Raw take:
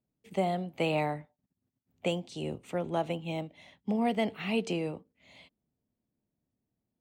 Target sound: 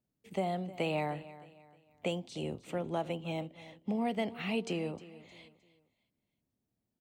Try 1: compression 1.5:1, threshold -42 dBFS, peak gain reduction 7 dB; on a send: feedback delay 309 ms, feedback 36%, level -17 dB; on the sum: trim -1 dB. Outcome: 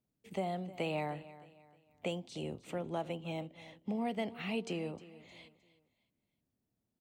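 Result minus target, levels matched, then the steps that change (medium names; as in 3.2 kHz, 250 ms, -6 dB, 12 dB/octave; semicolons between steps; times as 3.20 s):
compression: peak gain reduction +3 dB
change: compression 1.5:1, threshold -33 dBFS, peak gain reduction 4 dB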